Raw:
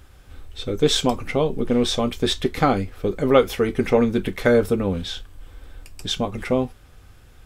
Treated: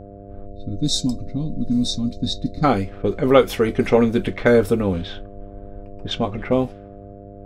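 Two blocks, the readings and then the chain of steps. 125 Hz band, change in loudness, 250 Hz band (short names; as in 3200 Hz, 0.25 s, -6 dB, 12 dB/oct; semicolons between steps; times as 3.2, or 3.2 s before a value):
+2.0 dB, +1.0 dB, +2.0 dB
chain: spectral gain 0.47–2.64, 320–3600 Hz -24 dB; low-pass opened by the level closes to 580 Hz, open at -16.5 dBFS; buzz 100 Hz, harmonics 7, -42 dBFS -1 dB/oct; gain +2 dB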